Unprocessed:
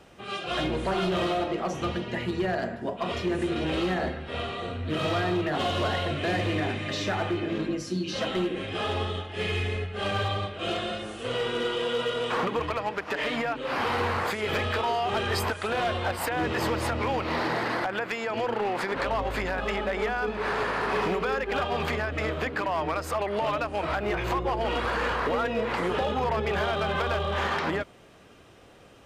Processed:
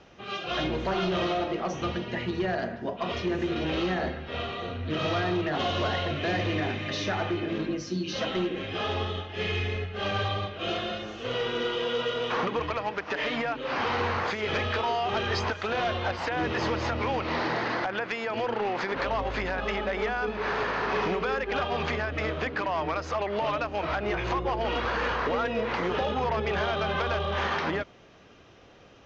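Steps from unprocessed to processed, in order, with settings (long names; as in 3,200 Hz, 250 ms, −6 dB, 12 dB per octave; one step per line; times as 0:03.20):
elliptic low-pass filter 6,300 Hz, stop band 40 dB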